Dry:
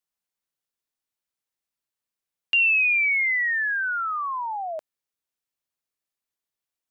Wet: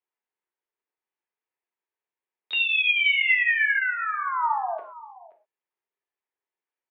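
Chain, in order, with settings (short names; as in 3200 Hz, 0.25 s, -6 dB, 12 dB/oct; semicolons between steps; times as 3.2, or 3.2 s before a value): speaker cabinet 380–2300 Hz, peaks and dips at 390 Hz +8 dB, 620 Hz -6 dB, 890 Hz +5 dB, 1300 Hz -5 dB; on a send: echo 0.526 s -18.5 dB; on the sum: non-linear reverb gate 0.15 s falling, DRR 2 dB; harmoniser +5 st -8 dB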